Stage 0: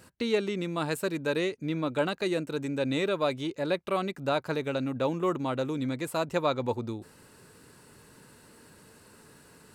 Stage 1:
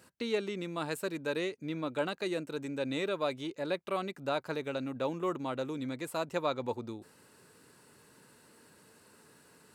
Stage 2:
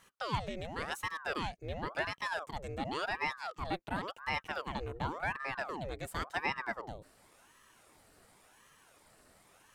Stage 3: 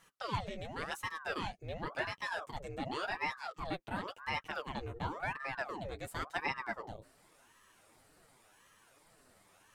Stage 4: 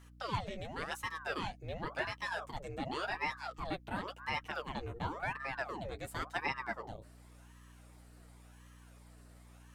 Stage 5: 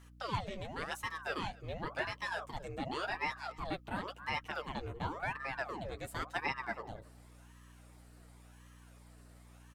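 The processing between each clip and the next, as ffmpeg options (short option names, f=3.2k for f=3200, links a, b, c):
-af "highpass=f=170:p=1,volume=-4.5dB"
-af "aeval=exprs='val(0)*sin(2*PI*830*n/s+830*0.8/0.92*sin(2*PI*0.92*n/s))':c=same"
-af "flanger=delay=5.7:depth=5.5:regen=-20:speed=1.1:shape=triangular,volume=1.5dB"
-af "aeval=exprs='val(0)+0.00158*(sin(2*PI*60*n/s)+sin(2*PI*2*60*n/s)/2+sin(2*PI*3*60*n/s)/3+sin(2*PI*4*60*n/s)/4+sin(2*PI*5*60*n/s)/5)':c=same"
-af "aecho=1:1:276:0.0631"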